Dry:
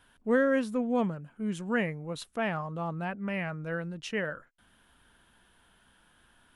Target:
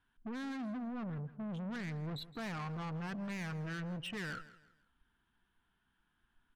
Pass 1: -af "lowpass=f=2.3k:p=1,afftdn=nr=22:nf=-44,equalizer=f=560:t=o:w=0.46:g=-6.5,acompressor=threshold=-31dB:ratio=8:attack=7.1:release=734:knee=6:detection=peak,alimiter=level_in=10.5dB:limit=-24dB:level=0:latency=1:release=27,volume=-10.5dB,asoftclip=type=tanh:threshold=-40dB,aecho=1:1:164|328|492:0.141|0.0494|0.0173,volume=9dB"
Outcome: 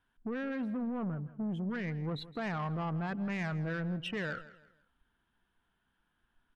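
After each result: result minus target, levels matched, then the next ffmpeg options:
compressor: peak gain reduction +11 dB; soft clip: distortion -6 dB; 500 Hz band +2.5 dB
-af "lowpass=f=2.3k:p=1,afftdn=nr=22:nf=-44,equalizer=f=560:t=o:w=0.46:g=-6.5,alimiter=level_in=10.5dB:limit=-24dB:level=0:latency=1:release=27,volume=-10.5dB,asoftclip=type=tanh:threshold=-40dB,aecho=1:1:164|328|492:0.141|0.0494|0.0173,volume=9dB"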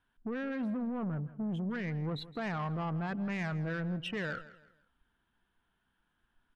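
soft clip: distortion -6 dB; 500 Hz band +2.5 dB
-af "lowpass=f=2.3k:p=1,afftdn=nr=22:nf=-44,equalizer=f=560:t=o:w=0.46:g=-6.5,alimiter=level_in=10.5dB:limit=-24dB:level=0:latency=1:release=27,volume=-10.5dB,asoftclip=type=tanh:threshold=-48dB,aecho=1:1:164|328|492:0.141|0.0494|0.0173,volume=9dB"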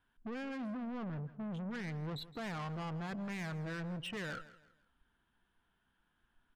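500 Hz band +2.5 dB
-af "lowpass=f=2.3k:p=1,afftdn=nr=22:nf=-44,equalizer=f=560:t=o:w=0.46:g=-15.5,alimiter=level_in=10.5dB:limit=-24dB:level=0:latency=1:release=27,volume=-10.5dB,asoftclip=type=tanh:threshold=-48dB,aecho=1:1:164|328|492:0.141|0.0494|0.0173,volume=9dB"

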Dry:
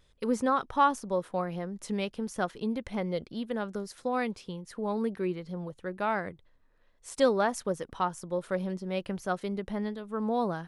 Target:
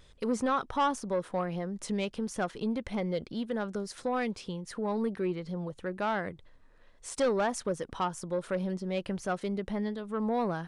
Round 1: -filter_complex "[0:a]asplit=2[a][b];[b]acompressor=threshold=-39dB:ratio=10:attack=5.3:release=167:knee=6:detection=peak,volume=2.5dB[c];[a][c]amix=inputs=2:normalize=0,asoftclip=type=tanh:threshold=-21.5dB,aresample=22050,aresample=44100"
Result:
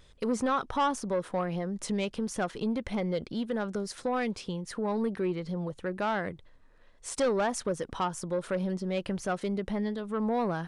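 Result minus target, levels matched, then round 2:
compressor: peak gain reduction -9.5 dB
-filter_complex "[0:a]asplit=2[a][b];[b]acompressor=threshold=-49.5dB:ratio=10:attack=5.3:release=167:knee=6:detection=peak,volume=2.5dB[c];[a][c]amix=inputs=2:normalize=0,asoftclip=type=tanh:threshold=-21.5dB,aresample=22050,aresample=44100"

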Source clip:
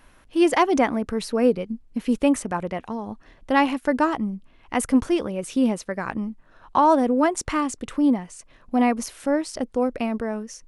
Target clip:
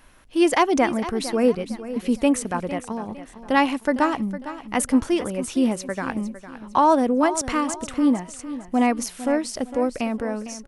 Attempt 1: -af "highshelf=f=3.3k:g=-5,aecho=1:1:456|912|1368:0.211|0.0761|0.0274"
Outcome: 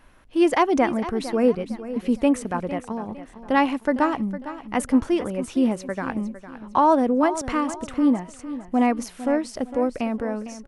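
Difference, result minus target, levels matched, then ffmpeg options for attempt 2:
8000 Hz band -7.0 dB
-af "highshelf=f=3.3k:g=4,aecho=1:1:456|912|1368:0.211|0.0761|0.0274"

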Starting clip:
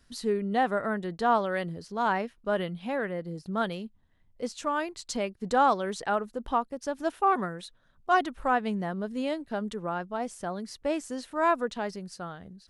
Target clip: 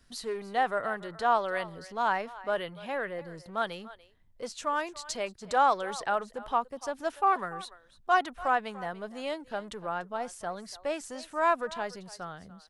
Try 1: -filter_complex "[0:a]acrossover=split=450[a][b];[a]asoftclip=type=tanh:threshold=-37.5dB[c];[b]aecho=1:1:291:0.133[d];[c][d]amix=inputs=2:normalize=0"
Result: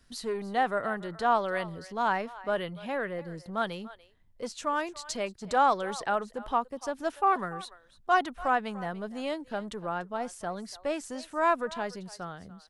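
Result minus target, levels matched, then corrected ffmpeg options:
soft clip: distortion -4 dB
-filter_complex "[0:a]acrossover=split=450[a][b];[a]asoftclip=type=tanh:threshold=-45.5dB[c];[b]aecho=1:1:291:0.133[d];[c][d]amix=inputs=2:normalize=0"

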